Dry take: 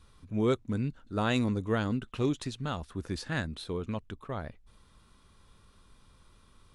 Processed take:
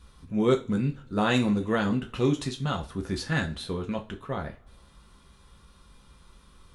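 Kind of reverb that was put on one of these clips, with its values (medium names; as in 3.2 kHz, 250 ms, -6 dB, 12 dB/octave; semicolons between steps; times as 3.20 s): two-slope reverb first 0.26 s, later 1.6 s, from -27 dB, DRR 2 dB; trim +3 dB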